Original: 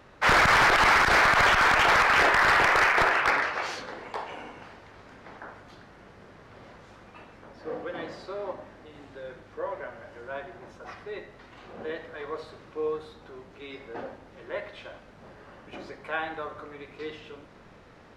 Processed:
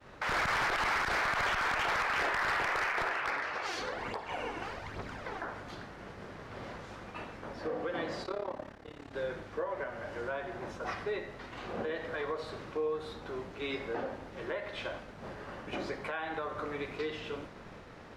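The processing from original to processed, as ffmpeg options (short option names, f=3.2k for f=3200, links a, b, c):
-filter_complex "[0:a]asplit=3[a][b][c];[a]afade=t=out:st=3.64:d=0.02[d];[b]aphaser=in_gain=1:out_gain=1:delay=3:decay=0.5:speed=1.2:type=triangular,afade=t=in:st=3.64:d=0.02,afade=t=out:st=5.44:d=0.02[e];[c]afade=t=in:st=5.44:d=0.02[f];[d][e][f]amix=inputs=3:normalize=0,asplit=3[g][h][i];[g]afade=t=out:st=8.23:d=0.02[j];[h]tremolo=f=35:d=0.889,afade=t=in:st=8.23:d=0.02,afade=t=out:st=9.12:d=0.02[k];[i]afade=t=in:st=9.12:d=0.02[l];[j][k][l]amix=inputs=3:normalize=0,agate=range=-33dB:threshold=-48dB:ratio=3:detection=peak,acompressor=threshold=-34dB:ratio=4,alimiter=level_in=7.5dB:limit=-24dB:level=0:latency=1:release=291,volume=-7.5dB,volume=5.5dB"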